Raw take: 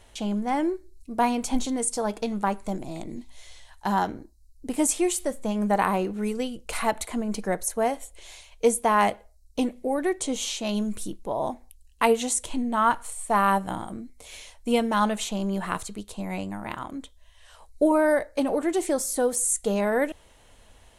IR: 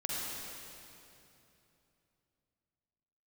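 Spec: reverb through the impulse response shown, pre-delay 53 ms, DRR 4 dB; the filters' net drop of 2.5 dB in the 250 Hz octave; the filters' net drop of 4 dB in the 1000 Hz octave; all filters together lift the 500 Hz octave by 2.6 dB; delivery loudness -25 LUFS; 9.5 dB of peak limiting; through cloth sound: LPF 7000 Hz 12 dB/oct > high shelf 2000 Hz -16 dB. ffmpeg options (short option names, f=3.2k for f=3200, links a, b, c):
-filter_complex "[0:a]equalizer=f=250:t=o:g=-4.5,equalizer=f=500:t=o:g=6.5,equalizer=f=1k:t=o:g=-3.5,alimiter=limit=-15.5dB:level=0:latency=1,asplit=2[a][b];[1:a]atrim=start_sample=2205,adelay=53[c];[b][c]afir=irnorm=-1:irlink=0,volume=-8.5dB[d];[a][d]amix=inputs=2:normalize=0,lowpass=7k,highshelf=f=2k:g=-16,volume=3.5dB"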